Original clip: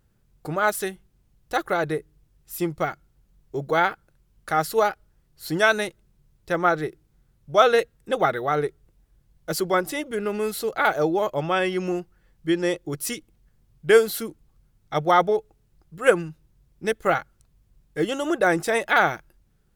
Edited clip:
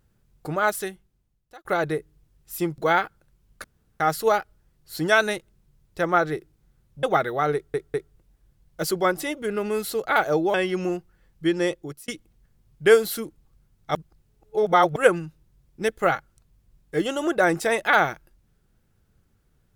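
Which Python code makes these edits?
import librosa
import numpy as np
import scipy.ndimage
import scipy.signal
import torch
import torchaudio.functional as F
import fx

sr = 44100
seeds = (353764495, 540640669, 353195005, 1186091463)

y = fx.edit(x, sr, fx.fade_out_span(start_s=0.59, length_s=1.06),
    fx.cut(start_s=2.78, length_s=0.87),
    fx.insert_room_tone(at_s=4.51, length_s=0.36),
    fx.cut(start_s=7.54, length_s=0.58),
    fx.stutter(start_s=8.63, slice_s=0.2, count=3),
    fx.cut(start_s=11.23, length_s=0.34),
    fx.fade_out_span(start_s=12.74, length_s=0.37),
    fx.reverse_span(start_s=14.98, length_s=1.01), tone=tone)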